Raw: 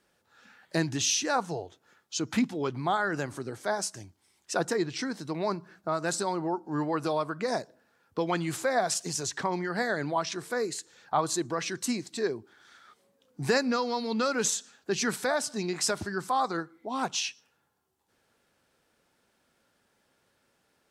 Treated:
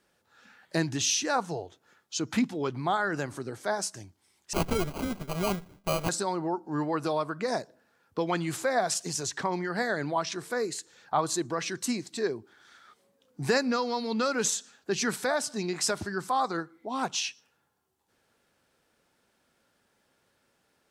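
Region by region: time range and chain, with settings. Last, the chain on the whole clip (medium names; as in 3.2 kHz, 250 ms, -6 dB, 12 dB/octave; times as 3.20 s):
4.53–6.09 s: comb filter that takes the minimum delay 4.8 ms + sample-rate reducer 1.8 kHz + bass shelf 190 Hz +4.5 dB
whole clip: none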